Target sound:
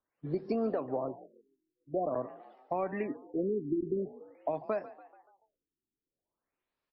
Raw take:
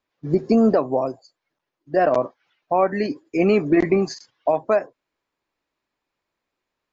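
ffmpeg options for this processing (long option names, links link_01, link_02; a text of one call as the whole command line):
ffmpeg -i in.wav -filter_complex "[0:a]acrossover=split=340|4000[link_01][link_02][link_03];[link_01]acompressor=threshold=-30dB:ratio=4[link_04];[link_02]acompressor=threshold=-24dB:ratio=4[link_05];[link_03]acompressor=threshold=-59dB:ratio=4[link_06];[link_04][link_05][link_06]amix=inputs=3:normalize=0,asplit=6[link_07][link_08][link_09][link_10][link_11][link_12];[link_08]adelay=144,afreqshift=46,volume=-17dB[link_13];[link_09]adelay=288,afreqshift=92,volume=-22.7dB[link_14];[link_10]adelay=432,afreqshift=138,volume=-28.4dB[link_15];[link_11]adelay=576,afreqshift=184,volume=-34dB[link_16];[link_12]adelay=720,afreqshift=230,volume=-39.7dB[link_17];[link_07][link_13][link_14][link_15][link_16][link_17]amix=inputs=6:normalize=0,afftfilt=real='re*lt(b*sr/1024,400*pow(5800/400,0.5+0.5*sin(2*PI*0.47*pts/sr)))':imag='im*lt(b*sr/1024,400*pow(5800/400,0.5+0.5*sin(2*PI*0.47*pts/sr)))':win_size=1024:overlap=0.75,volume=-8dB" out.wav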